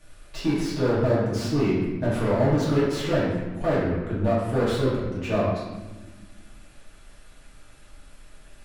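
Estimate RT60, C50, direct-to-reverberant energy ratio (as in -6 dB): 1.4 s, 0.5 dB, -9.0 dB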